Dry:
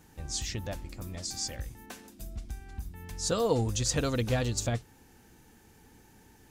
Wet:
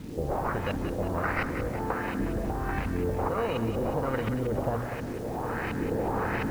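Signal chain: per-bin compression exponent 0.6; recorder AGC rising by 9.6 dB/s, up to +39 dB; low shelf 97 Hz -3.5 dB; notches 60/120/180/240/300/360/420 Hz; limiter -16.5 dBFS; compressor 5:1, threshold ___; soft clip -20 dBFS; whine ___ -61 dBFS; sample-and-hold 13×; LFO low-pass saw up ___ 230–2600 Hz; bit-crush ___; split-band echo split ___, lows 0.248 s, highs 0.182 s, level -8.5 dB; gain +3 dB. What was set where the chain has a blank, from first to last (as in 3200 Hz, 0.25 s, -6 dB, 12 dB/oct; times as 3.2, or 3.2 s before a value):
-30 dBFS, 1600 Hz, 1.4 Hz, 9-bit, 590 Hz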